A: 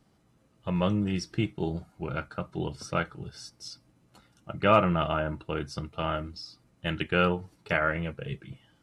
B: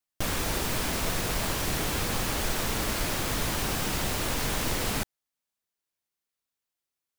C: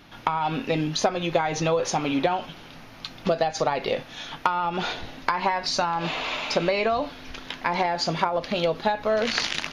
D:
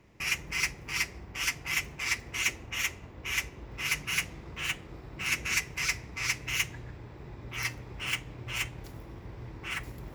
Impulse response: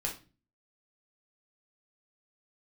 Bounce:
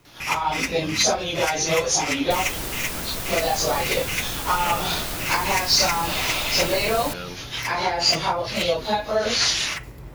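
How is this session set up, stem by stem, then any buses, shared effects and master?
−12.0 dB, 0.00 s, no send, no processing
−3.0 dB, 2.10 s, no send, high-shelf EQ 9,000 Hz +7.5 dB
+0.5 dB, 0.05 s, no send, random phases in long frames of 100 ms; bass and treble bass −5 dB, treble +13 dB
+0.5 dB, 0.00 s, send −11 dB, no processing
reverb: on, RT60 0.35 s, pre-delay 6 ms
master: bit reduction 10 bits

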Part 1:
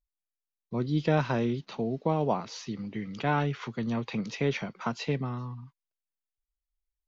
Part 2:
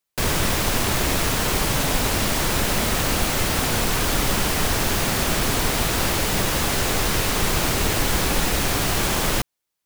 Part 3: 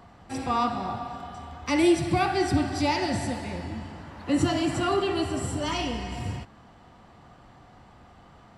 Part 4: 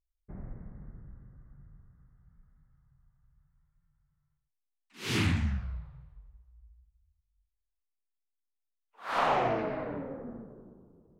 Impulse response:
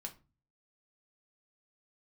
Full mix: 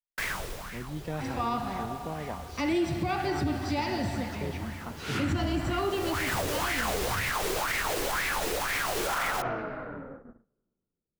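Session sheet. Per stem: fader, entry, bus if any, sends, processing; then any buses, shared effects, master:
−11.0 dB, 0.00 s, no send, no processing
−8.5 dB, 0.00 s, no send, low-shelf EQ 390 Hz −11.5 dB; auto-filter bell 2 Hz 390–2,100 Hz +17 dB; automatic ducking −20 dB, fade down 0.90 s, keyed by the first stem
−3.5 dB, 0.90 s, no send, low-pass filter 5,900 Hz
−4.0 dB, 0.00 s, no send, parametric band 1,400 Hz +13.5 dB 0.33 octaves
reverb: not used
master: noise gate −44 dBFS, range −27 dB; low-shelf EQ 72 Hz +7 dB; brickwall limiter −20 dBFS, peak gain reduction 8 dB

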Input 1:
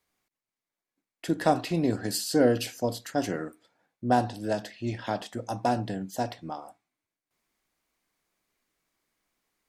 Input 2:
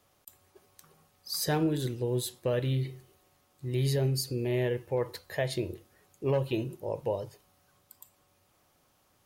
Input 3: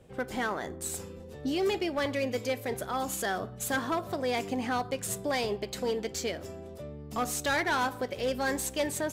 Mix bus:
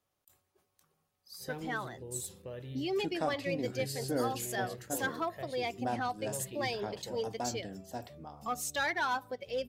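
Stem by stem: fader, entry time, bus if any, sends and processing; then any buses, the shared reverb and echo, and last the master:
−11.5 dB, 1.75 s, no send, no processing
−15.0 dB, 0.00 s, no send, level that may fall only so fast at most 130 dB per second
−1.0 dB, 1.30 s, no send, spectral dynamics exaggerated over time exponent 1.5; low-shelf EQ 250 Hz −9 dB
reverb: not used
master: no processing

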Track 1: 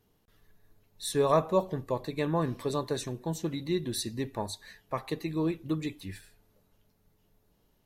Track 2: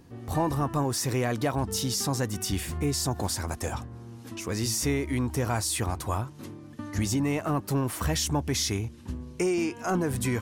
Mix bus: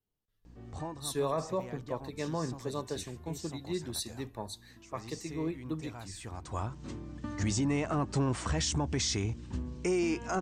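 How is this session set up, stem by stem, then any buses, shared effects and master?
−5.5 dB, 0.00 s, no send, multiband upward and downward expander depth 40%
0:05.99 −8 dB → 0:06.54 −1 dB, 0.45 s, no send, mains hum 60 Hz, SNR 17 dB; Butterworth low-pass 8,600 Hz 72 dB per octave; automatic ducking −10 dB, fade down 0.30 s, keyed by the first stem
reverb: not used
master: brickwall limiter −22.5 dBFS, peak gain reduction 8 dB

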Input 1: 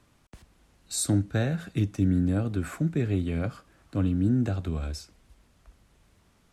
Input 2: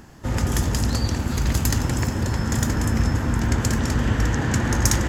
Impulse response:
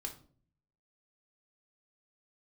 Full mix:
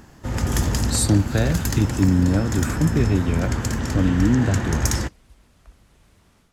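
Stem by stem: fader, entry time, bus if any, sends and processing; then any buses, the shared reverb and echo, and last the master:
−1.5 dB, 0.00 s, no send, no processing
−1.0 dB, 0.00 s, no send, automatic ducking −9 dB, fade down 1.30 s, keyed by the first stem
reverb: not used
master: automatic gain control gain up to 7.5 dB

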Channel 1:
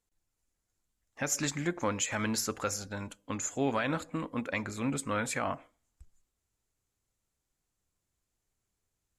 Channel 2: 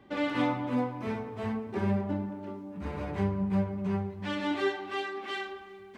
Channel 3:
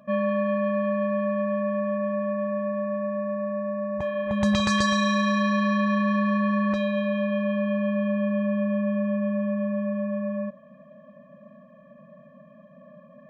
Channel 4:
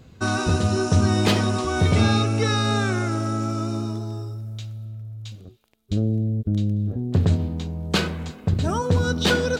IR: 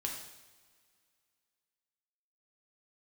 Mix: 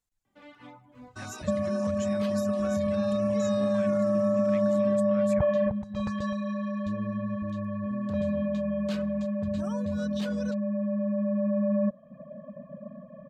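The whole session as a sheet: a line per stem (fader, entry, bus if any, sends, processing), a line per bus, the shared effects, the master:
−2.5 dB, 0.00 s, no send, downward compressor 2.5 to 1, threshold −44 dBFS, peak gain reduction 13 dB
−17.5 dB, 0.25 s, no send, no processing
−3.0 dB, 1.40 s, no send, tilt shelving filter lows +9.5 dB, about 1,200 Hz; compressor whose output falls as the input rises −22 dBFS, ratio −1; parametric band 530 Hz +3 dB 0.77 octaves
−13.0 dB, 0.95 s, no send, brickwall limiter −16.5 dBFS, peak gain reduction 8.5 dB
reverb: not used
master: reverb reduction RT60 0.75 s; parametric band 370 Hz −7.5 dB 0.68 octaves

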